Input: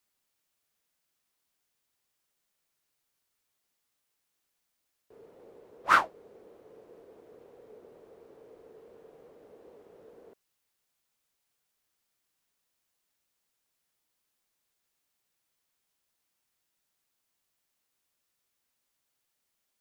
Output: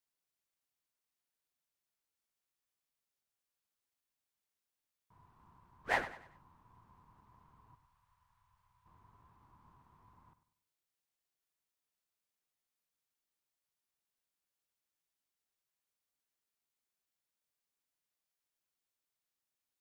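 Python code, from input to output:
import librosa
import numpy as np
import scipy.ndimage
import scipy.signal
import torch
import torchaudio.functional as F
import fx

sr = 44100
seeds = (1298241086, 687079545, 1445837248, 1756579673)

y = x * np.sin(2.0 * np.pi * 550.0 * np.arange(len(x)) / sr)
y = fx.tone_stack(y, sr, knobs='10-0-10', at=(7.75, 8.86))
y = fx.echo_feedback(y, sr, ms=97, feedback_pct=38, wet_db=-13.5)
y = y * 10.0 ** (-8.0 / 20.0)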